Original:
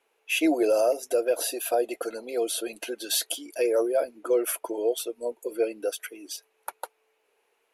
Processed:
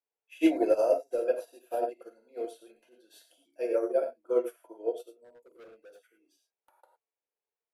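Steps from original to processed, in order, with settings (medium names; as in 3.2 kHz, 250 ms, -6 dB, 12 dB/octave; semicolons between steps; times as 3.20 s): treble shelf 2.5 kHz -11.5 dB; gated-style reverb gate 130 ms flat, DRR 0.5 dB; 2.39–3.00 s: transient shaper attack -7 dB, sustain +2 dB; 5.24–6.79 s: hard clipper -29 dBFS, distortion -16 dB; upward expansion 2.5:1, over -35 dBFS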